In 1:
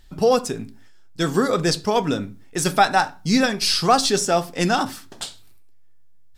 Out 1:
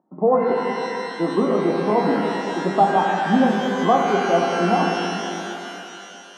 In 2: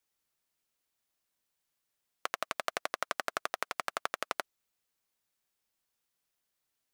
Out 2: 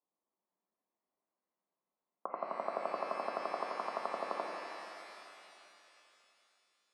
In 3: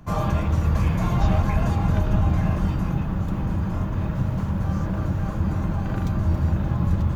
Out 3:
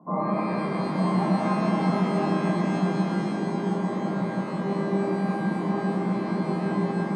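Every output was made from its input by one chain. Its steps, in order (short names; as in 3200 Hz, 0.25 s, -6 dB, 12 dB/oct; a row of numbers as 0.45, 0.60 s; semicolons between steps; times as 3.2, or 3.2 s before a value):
Chebyshev band-pass 180–1100 Hz, order 4; shimmer reverb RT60 3 s, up +12 st, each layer -8 dB, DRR 0 dB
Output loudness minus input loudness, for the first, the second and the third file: 0.0, -3.0, -2.0 LU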